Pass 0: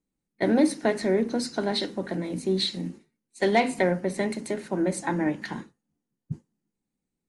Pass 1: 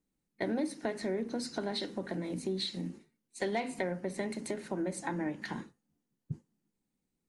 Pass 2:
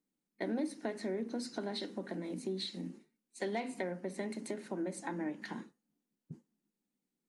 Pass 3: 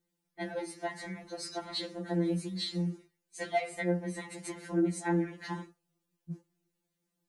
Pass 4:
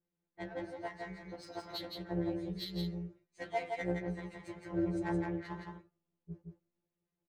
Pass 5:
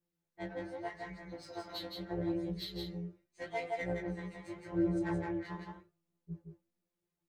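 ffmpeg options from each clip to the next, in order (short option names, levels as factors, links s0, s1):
-af "acompressor=threshold=0.0158:ratio=2.5"
-af "lowshelf=f=150:t=q:w=1.5:g=-11,volume=0.596"
-af "afftfilt=real='re*2.83*eq(mod(b,8),0)':imag='im*2.83*eq(mod(b,8),0)':win_size=2048:overlap=0.75,volume=2.37"
-af "adynamicsmooth=sensitivity=7.5:basefreq=2600,tremolo=f=240:d=0.519,aecho=1:1:167:0.631,volume=0.708"
-af "flanger=delay=17.5:depth=4.1:speed=0.81,volume=1.41"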